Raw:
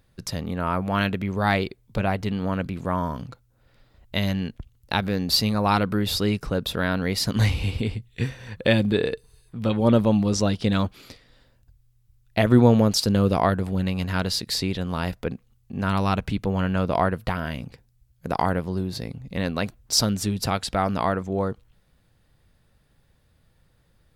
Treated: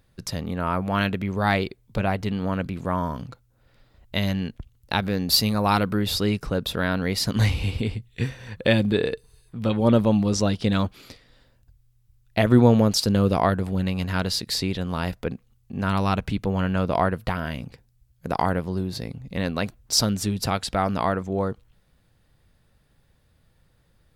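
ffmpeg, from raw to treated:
ffmpeg -i in.wav -filter_complex "[0:a]asettb=1/sr,asplit=3[link_01][link_02][link_03];[link_01]atrim=end=5.294[link_04];[link_02]atrim=start=5.29:end=5.91,asetpts=PTS-STARTPTS,afade=type=in:duration=0.004:curve=qsin,afade=type=out:start_time=0.616:duration=0.004:curve=qsin,highshelf=frequency=10000:gain=9.5[link_05];[link_03]atrim=start=5.906[link_06];[link_04][link_05]acrossfade=duration=0.004:curve1=hsin:curve2=qsin[link_07];[link_07][link_06]acrossfade=duration=0.004:curve1=qsin:curve2=hsin" out.wav

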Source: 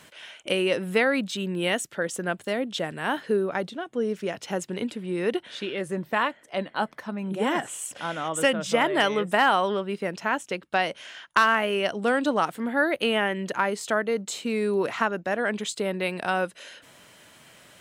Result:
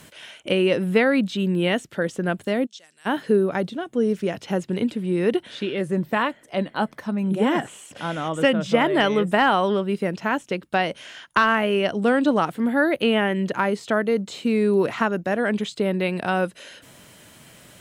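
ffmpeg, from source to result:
ffmpeg -i in.wav -filter_complex "[0:a]asplit=3[link_01][link_02][link_03];[link_01]afade=type=out:start_time=2.65:duration=0.02[link_04];[link_02]bandpass=frequency=6000:width_type=q:width=3.1,afade=type=in:start_time=2.65:duration=0.02,afade=type=out:start_time=3.05:duration=0.02[link_05];[link_03]afade=type=in:start_time=3.05:duration=0.02[link_06];[link_04][link_05][link_06]amix=inputs=3:normalize=0,aemphasis=mode=production:type=cd,acrossover=split=4300[link_07][link_08];[link_08]acompressor=threshold=-49dB:ratio=4:attack=1:release=60[link_09];[link_07][link_09]amix=inputs=2:normalize=0,lowshelf=frequency=400:gain=10.5" out.wav

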